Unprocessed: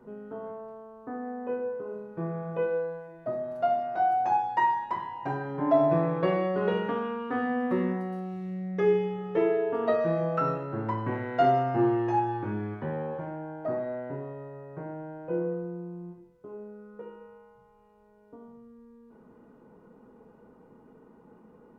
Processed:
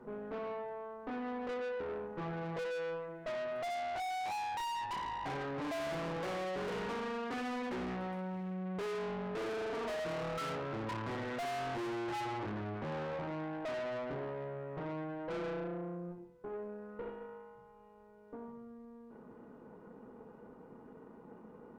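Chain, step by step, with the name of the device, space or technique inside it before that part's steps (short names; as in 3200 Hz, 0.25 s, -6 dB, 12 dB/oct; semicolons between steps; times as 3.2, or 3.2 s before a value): tube preamp driven hard (tube stage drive 42 dB, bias 0.7; low shelf 140 Hz -4.5 dB; high shelf 4100 Hz -6 dB); gain +5.5 dB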